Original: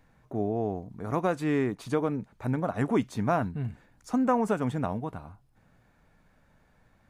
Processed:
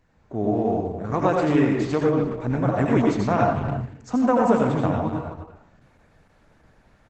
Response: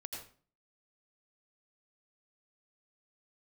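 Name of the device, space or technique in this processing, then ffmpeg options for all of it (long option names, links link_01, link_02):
speakerphone in a meeting room: -filter_complex "[1:a]atrim=start_sample=2205[link_01];[0:a][link_01]afir=irnorm=-1:irlink=0,asplit=2[link_02][link_03];[link_03]adelay=260,highpass=300,lowpass=3400,asoftclip=type=hard:threshold=-23dB,volume=-10dB[link_04];[link_02][link_04]amix=inputs=2:normalize=0,dynaudnorm=framelen=120:gausssize=5:maxgain=5dB,volume=4.5dB" -ar 48000 -c:a libopus -b:a 12k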